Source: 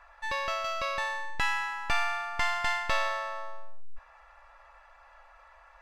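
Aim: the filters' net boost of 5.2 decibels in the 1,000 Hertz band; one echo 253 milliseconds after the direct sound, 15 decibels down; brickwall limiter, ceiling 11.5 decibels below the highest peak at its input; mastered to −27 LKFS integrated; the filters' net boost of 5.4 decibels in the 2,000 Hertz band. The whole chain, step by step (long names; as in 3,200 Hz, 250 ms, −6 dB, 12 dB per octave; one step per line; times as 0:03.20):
parametric band 1,000 Hz +5 dB
parametric band 2,000 Hz +5 dB
brickwall limiter −23.5 dBFS
single-tap delay 253 ms −15 dB
level +4.5 dB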